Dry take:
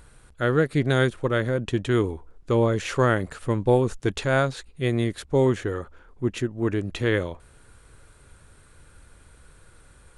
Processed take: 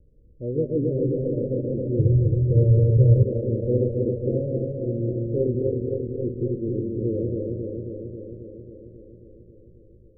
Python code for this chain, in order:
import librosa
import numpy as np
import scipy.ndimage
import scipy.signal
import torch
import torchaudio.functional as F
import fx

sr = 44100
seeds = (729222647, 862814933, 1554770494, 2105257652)

y = fx.reverse_delay_fb(x, sr, ms=135, feedback_pct=84, wet_db=-2.0)
y = scipy.signal.sosfilt(scipy.signal.butter(16, 570.0, 'lowpass', fs=sr, output='sos'), y)
y = fx.low_shelf_res(y, sr, hz=180.0, db=7.5, q=3.0, at=(1.99, 3.23))
y = y * 10.0 ** (-5.0 / 20.0)